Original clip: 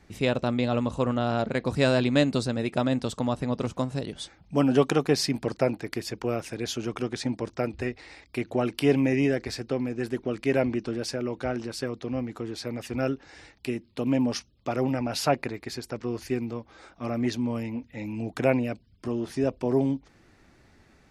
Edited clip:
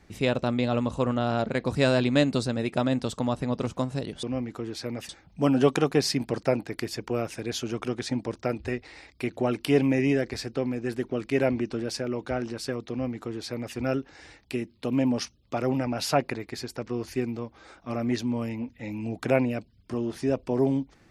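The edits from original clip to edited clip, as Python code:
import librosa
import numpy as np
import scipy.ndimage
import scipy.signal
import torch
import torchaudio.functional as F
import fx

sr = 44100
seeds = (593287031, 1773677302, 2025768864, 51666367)

y = fx.edit(x, sr, fx.duplicate(start_s=12.04, length_s=0.86, to_s=4.23), tone=tone)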